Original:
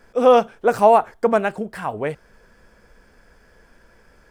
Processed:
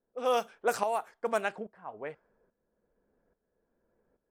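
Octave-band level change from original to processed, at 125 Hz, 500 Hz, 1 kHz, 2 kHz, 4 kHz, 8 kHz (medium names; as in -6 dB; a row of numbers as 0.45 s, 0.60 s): -19.5 dB, -15.5 dB, -14.0 dB, -8.5 dB, -7.0 dB, no reading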